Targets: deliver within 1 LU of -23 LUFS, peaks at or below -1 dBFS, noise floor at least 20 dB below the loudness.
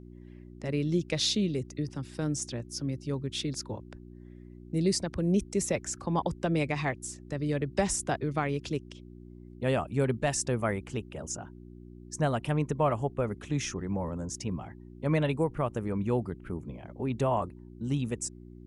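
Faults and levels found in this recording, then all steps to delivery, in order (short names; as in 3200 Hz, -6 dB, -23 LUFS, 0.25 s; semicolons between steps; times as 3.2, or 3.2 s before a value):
hum 60 Hz; harmonics up to 360 Hz; hum level -45 dBFS; loudness -31.5 LUFS; peak -16.0 dBFS; loudness target -23.0 LUFS
-> de-hum 60 Hz, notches 6; gain +8.5 dB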